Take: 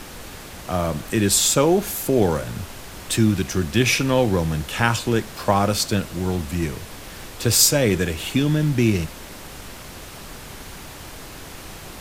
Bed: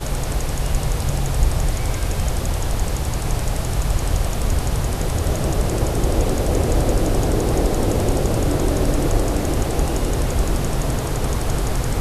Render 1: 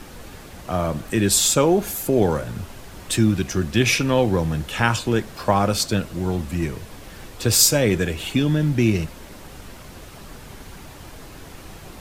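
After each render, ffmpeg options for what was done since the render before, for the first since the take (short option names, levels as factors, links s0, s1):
-af "afftdn=nr=6:nf=-38"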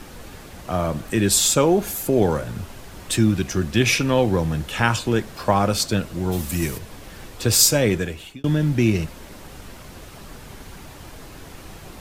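-filter_complex "[0:a]asplit=3[s0][s1][s2];[s0]afade=t=out:st=6.31:d=0.02[s3];[s1]aemphasis=mode=production:type=75kf,afade=t=in:st=6.31:d=0.02,afade=t=out:st=6.77:d=0.02[s4];[s2]afade=t=in:st=6.77:d=0.02[s5];[s3][s4][s5]amix=inputs=3:normalize=0,asplit=2[s6][s7];[s6]atrim=end=8.44,asetpts=PTS-STARTPTS,afade=t=out:st=7.86:d=0.58[s8];[s7]atrim=start=8.44,asetpts=PTS-STARTPTS,afade=t=in:d=0.004:c=hsin[s9];[s8][s9]concat=n=2:v=0:a=1"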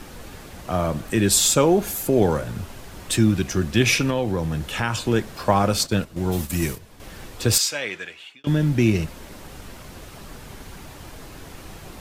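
-filter_complex "[0:a]asettb=1/sr,asplit=3[s0][s1][s2];[s0]atrim=end=4.104[s3];[s1]atrim=start=4.1:end=5,asetpts=PTS-STARTPTS,afade=t=in:d=0.004:c=qsin,afade=t=out:st=0.896:d=0.004:c=qsin,acompressor=threshold=0.0794:ratio=2:attack=3.2:release=140:knee=1:detection=peak[s4];[s2]atrim=start=4.996[s5];[s3][s4]acrossfade=d=0.004:c1=hsin:c2=qsin[s6];[s6][s5]acrossfade=d=0.004:c1=qsin:c2=hsin,asettb=1/sr,asplit=3[s7][s8][s9];[s7]atrim=end=5.634[s10];[s8]atrim=start=5.63:end=7,asetpts=PTS-STARTPTS,afade=t=in:d=0.004:c=qsin,afade=t=out:st=1.366:d=0.004:c=qsin,agate=range=0.355:threshold=0.0316:ratio=16:release=100:detection=peak[s11];[s9]atrim=start=6.996[s12];[s10][s11]acrossfade=d=0.004:c1=hsin:c2=qsin[s13];[s13][s12]acrossfade=d=0.004:c1=qsin:c2=hsin,asettb=1/sr,asplit=3[s14][s15][s16];[s14]atrim=end=7.584[s17];[s15]atrim=start=7.58:end=8.47,asetpts=PTS-STARTPTS,afade=t=in:d=0.004:c=qsin,afade=t=out:st=0.886:d=0.004:c=qsin,bandpass=f=2400:t=q:w=0.89[s18];[s16]atrim=start=8.466[s19];[s17][s18]acrossfade=d=0.004:c1=hsin:c2=qsin[s20];[s20][s19]acrossfade=d=0.004:c1=qsin:c2=hsin"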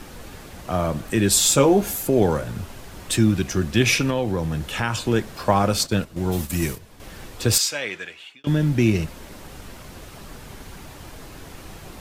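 -filter_complex "[0:a]asettb=1/sr,asplit=3[s0][s1][s2];[s0]atrim=end=1.454[s3];[s1]atrim=start=1.45:end=1.96,asetpts=PTS-STARTPTS,afade=t=in:d=0.004:c=qsin,afade=t=out:st=0.506:d=0.004:c=qsin,asplit=2[s4][s5];[s5]adelay=15,volume=0.501[s6];[s4][s6]amix=inputs=2:normalize=0,atrim=end_sample=22491[s7];[s2]atrim=start=1.956[s8];[s3][s7]acrossfade=d=0.004:c1=hsin:c2=qsin[s9];[s9][s8]acrossfade=d=0.004:c1=qsin:c2=hsin"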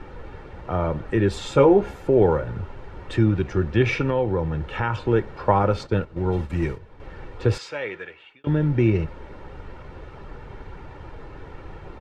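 -af "lowpass=1800,aecho=1:1:2.2:0.45"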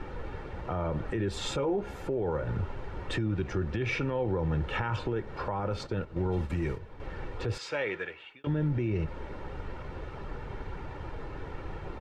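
-af "acompressor=threshold=0.0631:ratio=6,alimiter=limit=0.0794:level=0:latency=1:release=15"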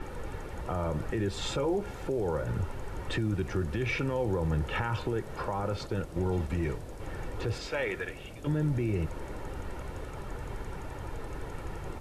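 -filter_complex "[1:a]volume=0.0473[s0];[0:a][s0]amix=inputs=2:normalize=0"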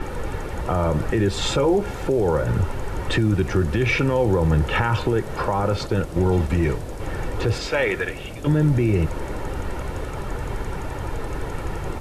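-af "volume=3.35"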